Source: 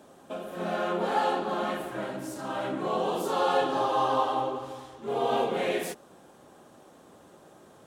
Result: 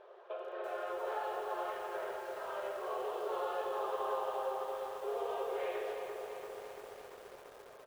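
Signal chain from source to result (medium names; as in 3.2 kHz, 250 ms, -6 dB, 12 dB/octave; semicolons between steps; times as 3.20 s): treble shelf 8 kHz -10 dB; band-stop 800 Hz, Q 15; compression 3:1, threshold -38 dBFS, peak gain reduction 12.5 dB; brick-wall FIR high-pass 360 Hz; distance through air 310 m; on a send: delay 97 ms -11.5 dB; on the sum: algorithmic reverb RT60 3.2 s, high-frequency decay 0.6×, pre-delay 55 ms, DRR 7 dB; bit-crushed delay 340 ms, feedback 80%, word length 9-bit, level -8 dB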